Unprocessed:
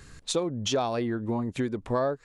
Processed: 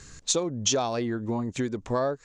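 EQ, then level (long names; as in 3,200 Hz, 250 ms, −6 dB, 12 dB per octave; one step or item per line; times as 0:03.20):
low-pass with resonance 6,700 Hz, resonance Q 3.5
0.0 dB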